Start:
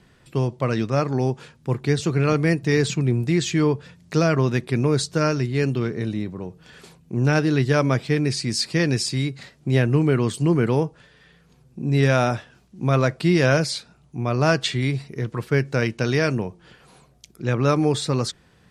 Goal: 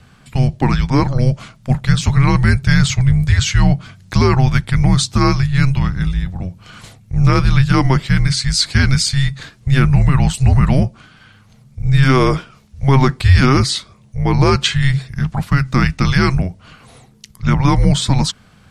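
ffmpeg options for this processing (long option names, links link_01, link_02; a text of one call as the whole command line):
ffmpeg -i in.wav -af "afreqshift=-270,alimiter=level_in=9.5dB:limit=-1dB:release=50:level=0:latency=1,volume=-1dB" out.wav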